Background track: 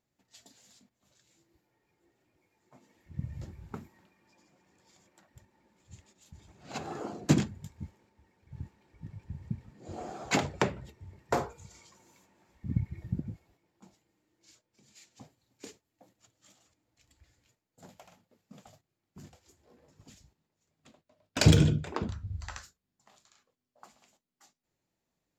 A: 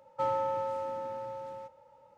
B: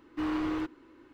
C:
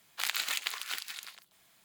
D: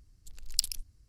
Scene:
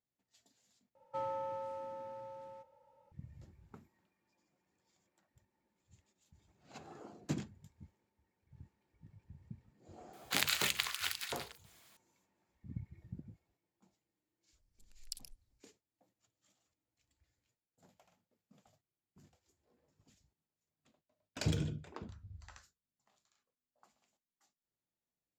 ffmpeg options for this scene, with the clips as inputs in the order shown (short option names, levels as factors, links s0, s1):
-filter_complex "[0:a]volume=0.2[s0];[1:a]bandreject=f=1200:w=9.7[s1];[s0]asplit=2[s2][s3];[s2]atrim=end=0.954[s4];[s1]atrim=end=2.17,asetpts=PTS-STARTPTS,volume=0.376[s5];[s3]atrim=start=3.116[s6];[3:a]atrim=end=1.84,asetpts=PTS-STARTPTS,volume=0.944,afade=t=in:d=0.004:c=hsin,afade=t=out:st=1.836:d=0.004:c=hsin,adelay=10130[s7];[4:a]atrim=end=1.08,asetpts=PTS-STARTPTS,volume=0.141,afade=t=in:d=0.004:c=hsin,afade=t=out:st=1.076:d=0.004:c=hsin,adelay=14530[s8];[s4][s5]acrossfade=d=0.004:c1=hsin:c2=hsin[s9];[s9][s6]acrossfade=d=0.004:c1=hsin:c2=hsin[s10];[s10][s7][s8]amix=inputs=3:normalize=0"